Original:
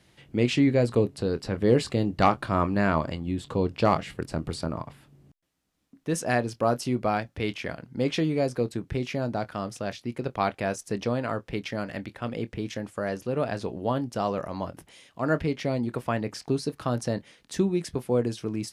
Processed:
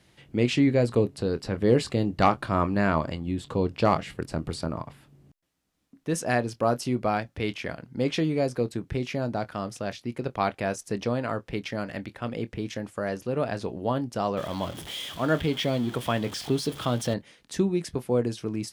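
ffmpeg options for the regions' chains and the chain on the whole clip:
ffmpeg -i in.wav -filter_complex "[0:a]asettb=1/sr,asplit=3[link_01][link_02][link_03];[link_01]atrim=end=14.374[link_04];[link_02]atrim=start=14.37:end=17.14,asetpts=PTS-STARTPTS,afade=type=in:duration=0.004:curve=qsin,afade=type=out:start_time=2.766:duration=0.004:curve=qsin,aeval=exprs='val(0)+0.5*0.0141*sgn(val(0))':channel_layout=same,highpass=45,equalizer=frequency=3300:width=5.4:gain=14[link_05];[link_03]atrim=start=17.136[link_06];[link_04][link_05]acrossfade=duration=0.004:curve1=hsin:curve2=qsin[link_07];[link_07][link_06]acrossfade=duration=0.004:curve1=qsin:curve2=hsin" out.wav

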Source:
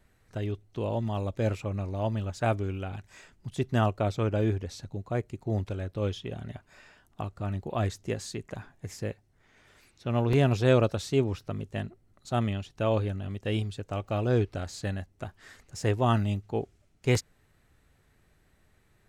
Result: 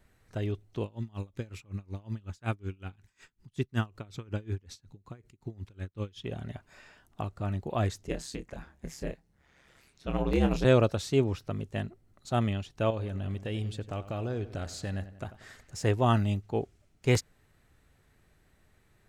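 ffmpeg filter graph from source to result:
ffmpeg -i in.wav -filter_complex "[0:a]asettb=1/sr,asplit=3[link_01][link_02][link_03];[link_01]atrim=end=0.834[link_04];[link_02]atrim=start=0.83:end=6.24,asetpts=PTS-STARTPTS,afade=type=in:duration=0.004:curve=qsin,afade=type=out:start_time=5.406:duration=0.004:curve=qsin,equalizer=frequency=630:width_type=o:width=0.8:gain=-11,aeval=exprs='val(0)*pow(10,-27*(0.5-0.5*cos(2*PI*5.4*n/s))/20)':channel_layout=same[link_05];[link_03]atrim=start=6.236[link_06];[link_04][link_05]acrossfade=duration=0.004:curve1=hsin:curve2=qsin[link_07];[link_07][link_06]acrossfade=duration=0.004:curve1=qsin:curve2=hsin,asettb=1/sr,asplit=3[link_08][link_09][link_10];[link_08]atrim=end=8.074[link_11];[link_09]atrim=start=8.07:end=10.65,asetpts=PTS-STARTPTS,afade=type=in:duration=0.004:curve=qsin,afade=type=out:start_time=2.576:duration=0.004:curve=qsin,aeval=exprs='val(0)*sin(2*PI*67*n/s)':channel_layout=same,asplit=2[link_12][link_13];[link_13]adelay=25,volume=-7dB[link_14];[link_12][link_14]amix=inputs=2:normalize=0,atrim=end_sample=113778[link_15];[link_10]atrim=start=10.646[link_16];[link_11][link_15]acrossfade=duration=0.004:curve1=hsin:curve2=qsin[link_17];[link_17][link_16]acrossfade=duration=0.004:curve1=qsin:curve2=hsin,asettb=1/sr,asplit=3[link_18][link_19][link_20];[link_18]atrim=end=12.904[link_21];[link_19]atrim=start=12.9:end=15.79,asetpts=PTS-STARTPTS,afade=type=in:duration=0.004:curve=qsin,afade=type=out:start_time=2.886:duration=0.004:curve=qsin,acompressor=threshold=-30dB:ratio=6:attack=3.2:release=140:knee=1:detection=peak,asplit=2[link_22][link_23];[link_23]adelay=93,lowpass=frequency=3600:poles=1,volume=-14.5dB,asplit=2[link_24][link_25];[link_25]adelay=93,lowpass=frequency=3600:poles=1,volume=0.53,asplit=2[link_26][link_27];[link_27]adelay=93,lowpass=frequency=3600:poles=1,volume=0.53,asplit=2[link_28][link_29];[link_29]adelay=93,lowpass=frequency=3600:poles=1,volume=0.53,asplit=2[link_30][link_31];[link_31]adelay=93,lowpass=frequency=3600:poles=1,volume=0.53[link_32];[link_22][link_24][link_26][link_28][link_30][link_32]amix=inputs=6:normalize=0,atrim=end_sample=127449[link_33];[link_20]atrim=start=15.786[link_34];[link_21][link_33]acrossfade=duration=0.004:curve1=hsin:curve2=qsin[link_35];[link_35][link_34]acrossfade=duration=0.004:curve1=qsin:curve2=hsin" out.wav

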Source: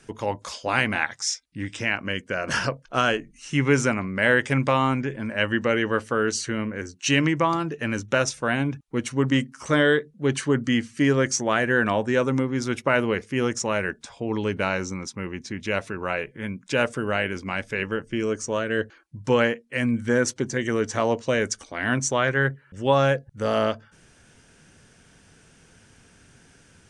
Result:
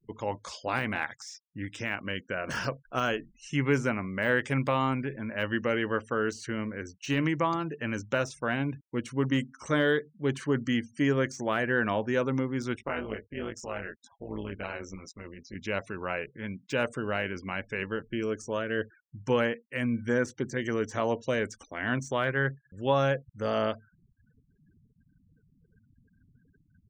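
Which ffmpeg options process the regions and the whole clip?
ffmpeg -i in.wav -filter_complex "[0:a]asettb=1/sr,asplit=3[link_01][link_02][link_03];[link_01]atrim=end=12.764[link_04];[link_02]atrim=start=12.76:end=15.55,asetpts=PTS-STARTPTS,afade=type=in:duration=0.004:curve=qsin,afade=type=out:start_time=2.786:duration=0.004:curve=qsin,flanger=delay=18.5:depth=2:speed=2.5,tremolo=f=170:d=0.75[link_05];[link_03]atrim=start=15.546[link_06];[link_04][link_05]acrossfade=duration=0.004:curve1=hsin:curve2=qsin[link_07];[link_07][link_06]acrossfade=duration=0.004:curve1=qsin:curve2=hsin,afftfilt=real='re*gte(hypot(re,im),0.00708)':imag='im*gte(hypot(re,im),0.00708)':win_size=1024:overlap=0.75,deesser=0.75,volume=-5.5dB" out.wav

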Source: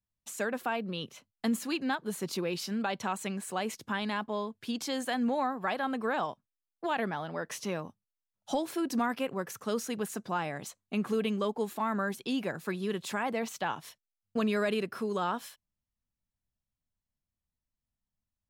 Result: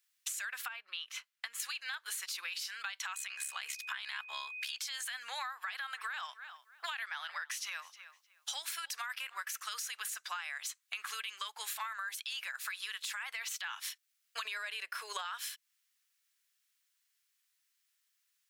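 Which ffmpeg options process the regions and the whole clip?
ffmpeg -i in.wav -filter_complex "[0:a]asettb=1/sr,asplit=3[link_01][link_02][link_03];[link_01]atrim=end=0.684[link_04];[link_02]atrim=start=0.68:end=1.6,asetpts=PTS-STARTPTS,afade=type=in:duration=0.004:curve=qsin,afade=type=out:start_time=0.916:duration=0.004:curve=qsin,highshelf=frequency=3400:gain=-11.5,acompressor=threshold=-42dB:ratio=2.5:attack=3.2:release=140:knee=1:detection=peak[link_05];[link_03]atrim=start=1.596[link_06];[link_04][link_05]acrossfade=duration=0.004:curve1=hsin:curve2=qsin[link_07];[link_07][link_06]acrossfade=duration=0.004:curve1=qsin:curve2=hsin,asettb=1/sr,asplit=3[link_08][link_09][link_10];[link_08]atrim=end=3.144[link_11];[link_09]atrim=start=3.14:end=4.78,asetpts=PTS-STARTPTS,afade=type=in:duration=0.004:curve=qsin,afade=type=out:start_time=1.636:duration=0.004:curve=qsin,aeval=exprs='val(0)*sin(2*PI*35*n/s)':channel_layout=same,aeval=exprs='val(0)+0.00158*sin(2*PI*2500*n/s)':channel_layout=same[link_12];[link_10]atrim=start=4.776[link_13];[link_11][link_12]acrossfade=duration=0.004:curve1=hsin:curve2=qsin[link_14];[link_14][link_13]acrossfade=duration=0.004:curve1=qsin:curve2=hsin,asettb=1/sr,asplit=3[link_15][link_16][link_17];[link_15]atrim=end=5.484[link_18];[link_16]atrim=start=5.48:end=10.15,asetpts=PTS-STARTPTS,afade=type=in:duration=0.004:curve=qsin,afade=type=out:start_time=4.666:duration=0.004:curve=qsin,equalizer=frequency=230:width_type=o:width=0.41:gain=-12,asplit=2[link_19][link_20];[link_20]adelay=307,lowpass=frequency=3800:poles=1,volume=-24dB,asplit=2[link_21][link_22];[link_22]adelay=307,lowpass=frequency=3800:poles=1,volume=0.2[link_23];[link_19][link_21][link_23]amix=inputs=3:normalize=0,atrim=end_sample=205947[link_24];[link_17]atrim=start=10.146[link_25];[link_18][link_24]acrossfade=duration=0.004:curve1=hsin:curve2=qsin[link_26];[link_26][link_25]acrossfade=duration=0.004:curve1=qsin:curve2=hsin,asettb=1/sr,asplit=3[link_27][link_28][link_29];[link_27]atrim=end=14.454[link_30];[link_28]atrim=start=14.45:end=15.25,asetpts=PTS-STARTPTS,afade=type=in:duration=0.004:curve=qsin,afade=type=out:start_time=0.796:duration=0.004:curve=qsin,equalizer=frequency=480:width=0.75:gain=14.5,bandreject=frequency=1300:width=9.7[link_31];[link_29]atrim=start=15.246[link_32];[link_30][link_31]acrossfade=duration=0.004:curve1=hsin:curve2=qsin[link_33];[link_33][link_32]acrossfade=duration=0.004:curve1=qsin:curve2=hsin,highpass=frequency=1500:width=0.5412,highpass=frequency=1500:width=1.3066,alimiter=level_in=11dB:limit=-24dB:level=0:latency=1:release=31,volume=-11dB,acompressor=threshold=-54dB:ratio=10,volume=17dB" out.wav

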